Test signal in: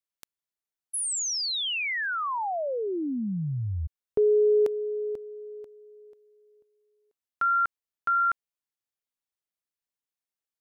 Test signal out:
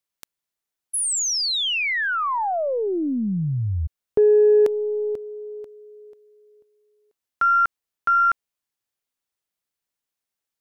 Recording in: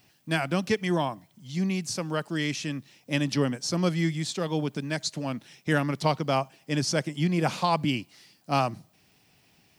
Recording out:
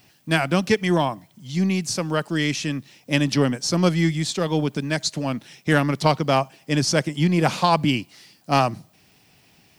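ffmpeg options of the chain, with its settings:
-af "aeval=exprs='0.316*(cos(1*acos(clip(val(0)/0.316,-1,1)))-cos(1*PI/2))+0.0398*(cos(2*acos(clip(val(0)/0.316,-1,1)))-cos(2*PI/2))+0.00562*(cos(8*acos(clip(val(0)/0.316,-1,1)))-cos(8*PI/2))':c=same,volume=6dB"

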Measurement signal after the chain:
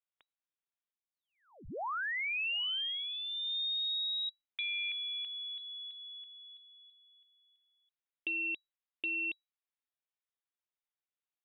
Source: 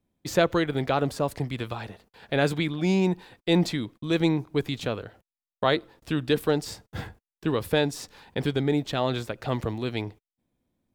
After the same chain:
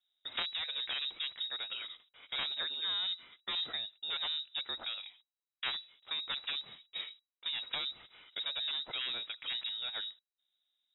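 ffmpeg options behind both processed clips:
-filter_complex "[0:a]aeval=exprs='0.473*(cos(1*acos(clip(val(0)/0.473,-1,1)))-cos(1*PI/2))+0.237*(cos(3*acos(clip(val(0)/0.473,-1,1)))-cos(3*PI/2))':c=same,acrossover=split=240|770[a][b][c];[a]acompressor=threshold=-35dB:ratio=4[d];[b]acompressor=threshold=-47dB:ratio=4[e];[c]acompressor=threshold=-35dB:ratio=4[f];[d][e][f]amix=inputs=3:normalize=0,lowpass=f=3.3k:t=q:w=0.5098,lowpass=f=3.3k:t=q:w=0.6013,lowpass=f=3.3k:t=q:w=0.9,lowpass=f=3.3k:t=q:w=2.563,afreqshift=-3900"

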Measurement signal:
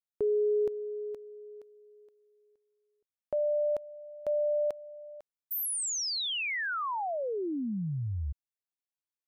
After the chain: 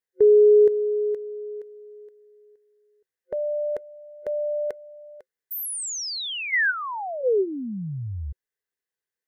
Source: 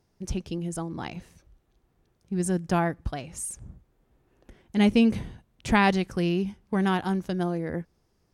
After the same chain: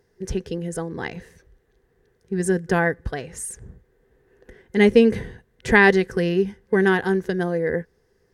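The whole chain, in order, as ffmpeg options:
-af "superequalizer=7b=3.55:11b=3.16,volume=2dB"

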